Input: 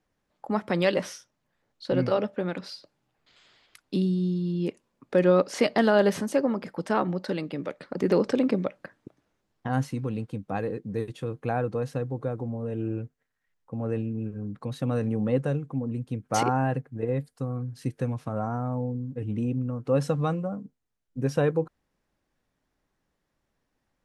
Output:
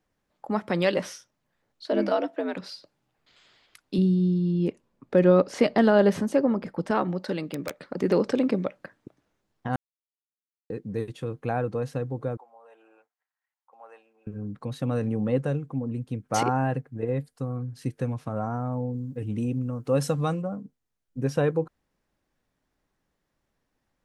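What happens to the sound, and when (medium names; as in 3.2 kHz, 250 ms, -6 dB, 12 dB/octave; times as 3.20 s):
1.87–2.56 s: frequency shift +79 Hz
3.98–6.91 s: tilt EQ -1.5 dB/octave
7.42–7.84 s: integer overflow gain 21.5 dB
9.76–10.70 s: mute
12.37–14.27 s: ladder high-pass 720 Hz, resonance 50%
18.93–20.42 s: treble shelf 5.6 kHz +12 dB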